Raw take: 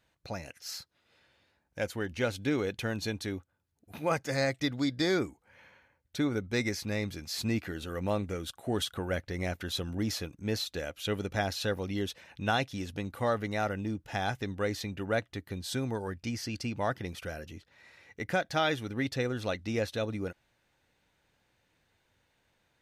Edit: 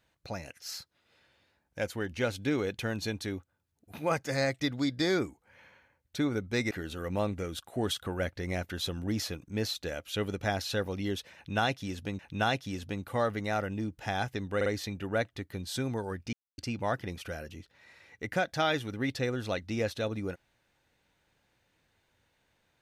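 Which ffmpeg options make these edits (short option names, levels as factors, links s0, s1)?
-filter_complex "[0:a]asplit=7[s0][s1][s2][s3][s4][s5][s6];[s0]atrim=end=6.712[s7];[s1]atrim=start=7.618:end=13.102[s8];[s2]atrim=start=12.258:end=14.682[s9];[s3]atrim=start=14.628:end=14.682[s10];[s4]atrim=start=14.628:end=16.3,asetpts=PTS-STARTPTS,afade=t=out:st=1.668:d=0.004:c=hsin[s11];[s5]atrim=start=16.3:end=16.55,asetpts=PTS-STARTPTS,volume=0[s12];[s6]atrim=start=16.55,asetpts=PTS-STARTPTS,afade=t=in:d=0.004:c=hsin[s13];[s7][s8]acrossfade=d=0.004:c1=hsin:c2=hsin[s14];[s14][s9]acrossfade=d=0.004:c1=hsin:c2=hsin[s15];[s15][s10]acrossfade=d=0.004:c1=hsin:c2=hsin[s16];[s11][s12][s13]concat=n=3:v=0:a=1[s17];[s16][s17]acrossfade=d=0.004:c1=hsin:c2=hsin"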